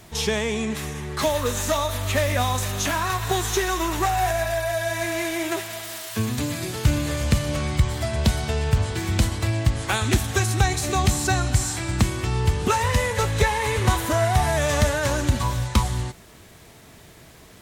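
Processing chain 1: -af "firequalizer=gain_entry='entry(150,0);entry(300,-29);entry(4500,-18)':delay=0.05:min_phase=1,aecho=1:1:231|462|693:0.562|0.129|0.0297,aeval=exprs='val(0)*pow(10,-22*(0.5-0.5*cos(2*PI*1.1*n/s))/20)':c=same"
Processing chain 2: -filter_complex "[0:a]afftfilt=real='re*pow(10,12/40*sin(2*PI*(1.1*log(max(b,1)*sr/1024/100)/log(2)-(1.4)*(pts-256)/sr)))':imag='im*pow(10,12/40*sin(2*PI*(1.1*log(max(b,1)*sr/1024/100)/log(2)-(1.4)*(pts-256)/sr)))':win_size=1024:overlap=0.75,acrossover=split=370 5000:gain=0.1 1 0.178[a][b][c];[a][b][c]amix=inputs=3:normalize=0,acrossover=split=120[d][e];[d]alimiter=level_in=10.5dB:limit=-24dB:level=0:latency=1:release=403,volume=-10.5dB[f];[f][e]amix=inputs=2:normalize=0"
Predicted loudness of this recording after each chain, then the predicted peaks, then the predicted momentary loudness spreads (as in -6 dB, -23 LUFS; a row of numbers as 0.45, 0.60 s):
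-32.0, -25.5 LUFS; -9.5, -6.5 dBFS; 20, 10 LU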